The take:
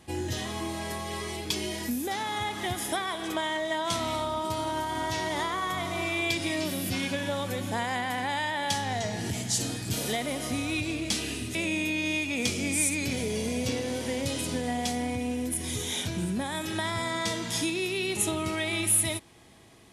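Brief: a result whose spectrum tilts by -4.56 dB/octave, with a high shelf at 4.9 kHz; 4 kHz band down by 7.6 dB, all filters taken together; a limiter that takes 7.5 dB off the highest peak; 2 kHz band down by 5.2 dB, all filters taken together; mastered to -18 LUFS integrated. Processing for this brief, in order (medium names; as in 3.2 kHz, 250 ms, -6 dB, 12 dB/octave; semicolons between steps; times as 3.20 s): peaking EQ 2 kHz -3.5 dB; peaking EQ 4 kHz -6 dB; treble shelf 4.9 kHz -5.5 dB; trim +16.5 dB; peak limiter -9 dBFS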